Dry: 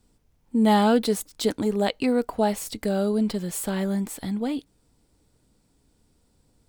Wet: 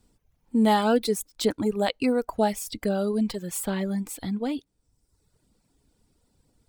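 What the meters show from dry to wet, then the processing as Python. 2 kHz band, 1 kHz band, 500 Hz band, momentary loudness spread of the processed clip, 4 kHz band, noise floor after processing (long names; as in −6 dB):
−0.5 dB, −1.0 dB, −1.0 dB, 9 LU, −1.0 dB, −73 dBFS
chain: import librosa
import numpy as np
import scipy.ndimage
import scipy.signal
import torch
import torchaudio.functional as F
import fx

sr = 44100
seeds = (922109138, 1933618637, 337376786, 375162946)

y = fx.dereverb_blind(x, sr, rt60_s=1.0)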